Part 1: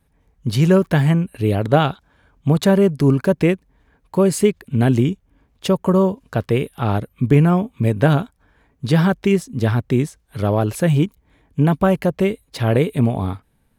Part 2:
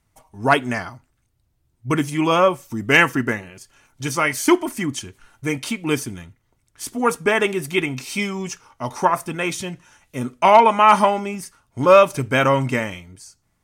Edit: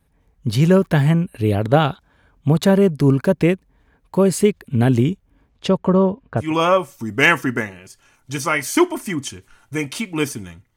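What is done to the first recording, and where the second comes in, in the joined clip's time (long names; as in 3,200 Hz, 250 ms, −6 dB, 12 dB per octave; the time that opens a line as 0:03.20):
part 1
0:05.48–0:06.54: low-pass filter 8,600 Hz → 1,300 Hz
0:06.45: continue with part 2 from 0:02.16, crossfade 0.18 s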